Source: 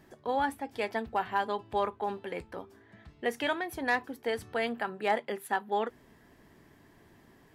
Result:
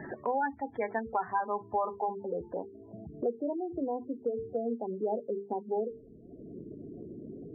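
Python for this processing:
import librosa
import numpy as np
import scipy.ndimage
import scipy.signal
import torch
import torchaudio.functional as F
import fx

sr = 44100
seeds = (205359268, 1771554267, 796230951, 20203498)

y = fx.filter_sweep_lowpass(x, sr, from_hz=2000.0, to_hz=460.0, start_s=0.57, end_s=3.45, q=1.3)
y = fx.spec_gate(y, sr, threshold_db=-15, keep='strong')
y = fx.hum_notches(y, sr, base_hz=50, count=9)
y = fx.band_squash(y, sr, depth_pct=70)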